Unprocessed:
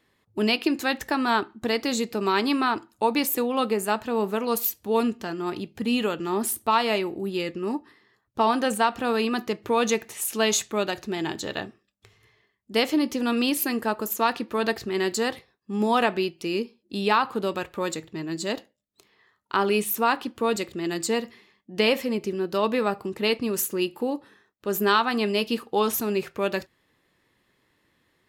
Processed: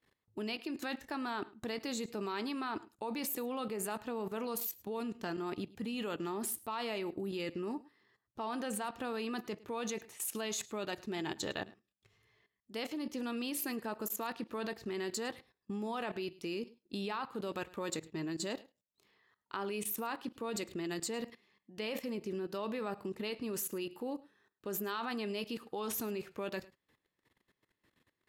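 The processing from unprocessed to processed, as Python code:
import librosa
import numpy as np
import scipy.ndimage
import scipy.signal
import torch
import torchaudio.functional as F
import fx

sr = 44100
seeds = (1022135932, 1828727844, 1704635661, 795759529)

y = fx.level_steps(x, sr, step_db=17)
y = y + 10.0 ** (-21.5 / 20.0) * np.pad(y, (int(106 * sr / 1000.0), 0))[:len(y)]
y = y * librosa.db_to_amplitude(-3.5)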